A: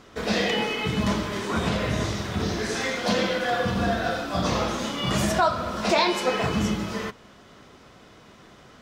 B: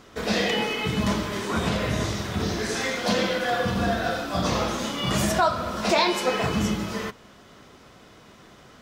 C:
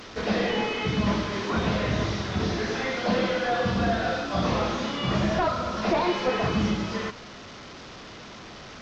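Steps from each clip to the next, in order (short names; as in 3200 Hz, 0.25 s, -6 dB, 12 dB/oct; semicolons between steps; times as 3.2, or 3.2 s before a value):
high shelf 10000 Hz +6.5 dB
delta modulation 32 kbps, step -36.5 dBFS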